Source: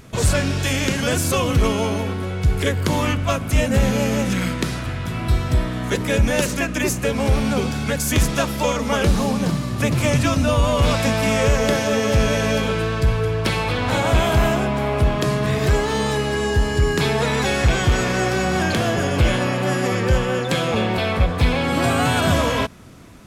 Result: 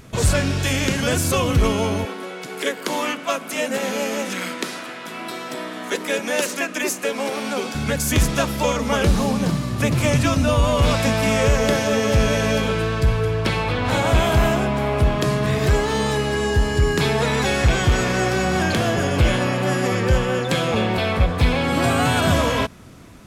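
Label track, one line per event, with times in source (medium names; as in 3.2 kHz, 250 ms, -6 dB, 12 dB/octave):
2.050000	7.750000	Bessel high-pass 350 Hz, order 8
13.430000	13.840000	treble shelf 7.6 kHz -> 4.6 kHz -8 dB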